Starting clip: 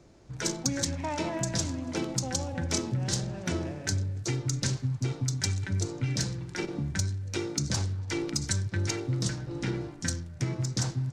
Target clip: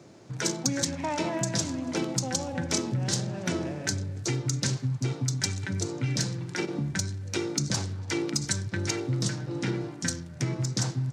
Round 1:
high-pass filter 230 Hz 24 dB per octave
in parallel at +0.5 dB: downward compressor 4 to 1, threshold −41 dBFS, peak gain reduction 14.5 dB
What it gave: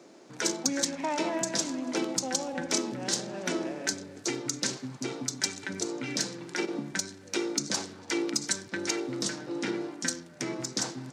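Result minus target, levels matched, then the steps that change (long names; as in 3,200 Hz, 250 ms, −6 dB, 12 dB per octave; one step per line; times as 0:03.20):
125 Hz band −14.5 dB
change: high-pass filter 110 Hz 24 dB per octave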